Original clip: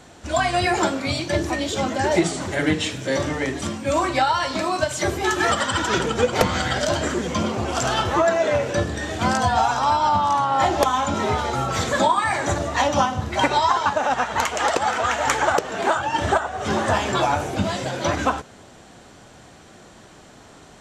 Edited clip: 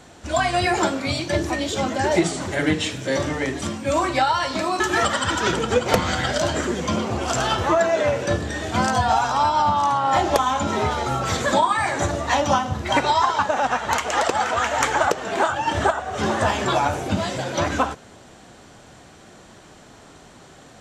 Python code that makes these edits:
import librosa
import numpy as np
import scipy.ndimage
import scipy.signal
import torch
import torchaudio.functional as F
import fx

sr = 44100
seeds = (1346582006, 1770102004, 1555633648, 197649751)

y = fx.edit(x, sr, fx.cut(start_s=4.8, length_s=0.47), tone=tone)